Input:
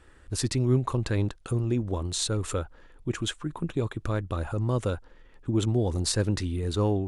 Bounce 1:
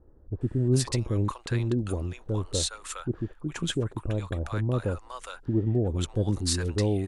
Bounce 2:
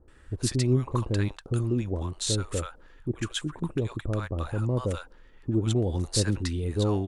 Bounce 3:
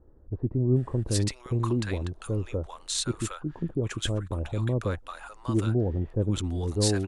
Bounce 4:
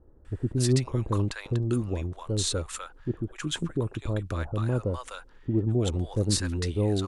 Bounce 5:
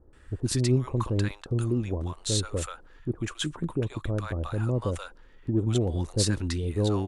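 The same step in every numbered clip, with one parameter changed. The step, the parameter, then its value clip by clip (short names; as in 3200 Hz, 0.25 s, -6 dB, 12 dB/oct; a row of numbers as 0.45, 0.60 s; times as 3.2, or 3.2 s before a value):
bands offset in time, time: 410, 80, 760, 250, 130 ms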